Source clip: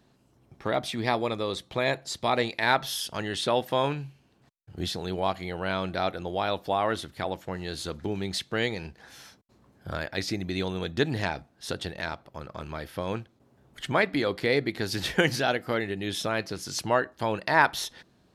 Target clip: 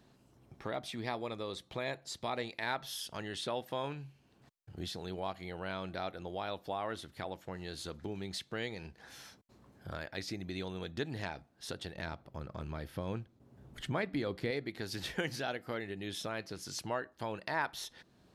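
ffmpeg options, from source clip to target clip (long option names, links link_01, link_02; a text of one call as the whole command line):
ffmpeg -i in.wav -filter_complex "[0:a]asettb=1/sr,asplit=3[link_01][link_02][link_03];[link_01]atrim=end=11.964[link_04];[link_02]atrim=start=11.96:end=14.51,asetpts=PTS-STARTPTS,afade=type=in:duration=0.004:curve=qsin,afade=type=out:start_time=2.546:duration=0.004:curve=qsin,lowshelf=frequency=320:gain=9[link_05];[link_03]atrim=start=14.506[link_06];[link_04][link_05]acrossfade=duration=0.004:curve1=hsin:curve2=qsin[link_07];[link_07][link_06]acrossfade=duration=0.004:curve1=qsin:curve2=hsin,acompressor=threshold=-52dB:ratio=1.5,volume=-1dB" out.wav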